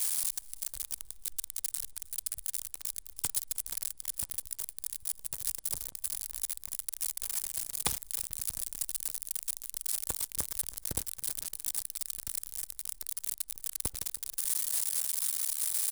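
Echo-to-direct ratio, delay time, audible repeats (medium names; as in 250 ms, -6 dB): -22.5 dB, 314 ms, 2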